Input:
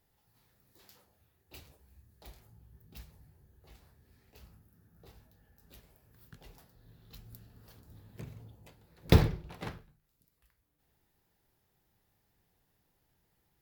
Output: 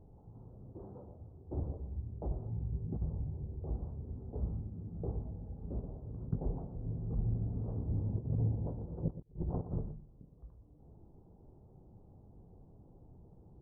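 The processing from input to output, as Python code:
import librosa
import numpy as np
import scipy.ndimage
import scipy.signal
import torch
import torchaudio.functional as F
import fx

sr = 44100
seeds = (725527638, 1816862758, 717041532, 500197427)

y = fx.over_compress(x, sr, threshold_db=-50.0, ratio=-0.5)
y = scipy.ndimage.gaussian_filter1d(y, 13.0, mode='constant')
y = y + 10.0 ** (-12.5 / 20.0) * np.pad(y, (int(118 * sr / 1000.0), 0))[:len(y)]
y = F.gain(torch.from_numpy(y), 11.0).numpy()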